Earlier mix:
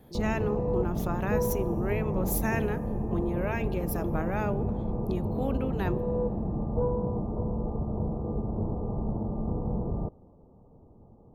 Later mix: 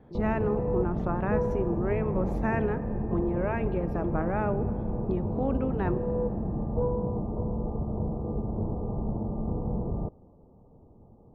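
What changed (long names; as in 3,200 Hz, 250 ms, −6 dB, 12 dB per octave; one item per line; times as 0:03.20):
speech: send +9.5 dB
master: add low-pass filter 1,600 Hz 12 dB per octave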